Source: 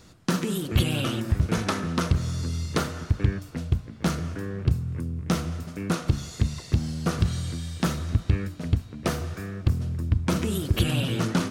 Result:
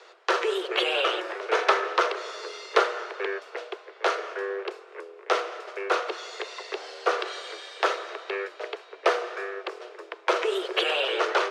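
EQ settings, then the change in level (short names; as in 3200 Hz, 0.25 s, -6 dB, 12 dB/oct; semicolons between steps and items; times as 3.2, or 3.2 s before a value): steep high-pass 380 Hz 96 dB/oct; LPF 3000 Hz 12 dB/oct; +8.5 dB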